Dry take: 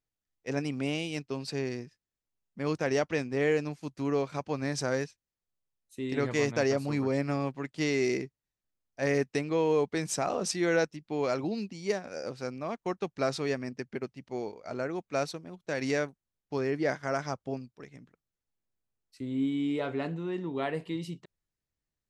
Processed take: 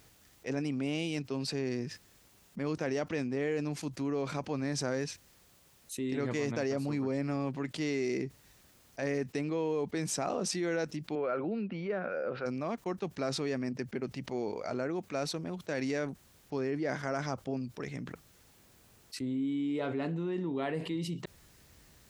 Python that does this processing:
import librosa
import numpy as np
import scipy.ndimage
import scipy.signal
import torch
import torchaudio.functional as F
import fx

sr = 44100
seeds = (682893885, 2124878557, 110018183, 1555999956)

y = fx.cabinet(x, sr, low_hz=110.0, low_slope=12, high_hz=2700.0, hz=(130.0, 270.0, 530.0, 890.0, 1400.0, 2000.0), db=(-7, -7, 5, -4, 9, -3), at=(11.15, 12.46))
y = scipy.signal.sosfilt(scipy.signal.butter(2, 42.0, 'highpass', fs=sr, output='sos'), y)
y = fx.dynamic_eq(y, sr, hz=250.0, q=0.99, threshold_db=-39.0, ratio=4.0, max_db=4)
y = fx.env_flatten(y, sr, amount_pct=70)
y = F.gain(torch.from_numpy(y), -9.0).numpy()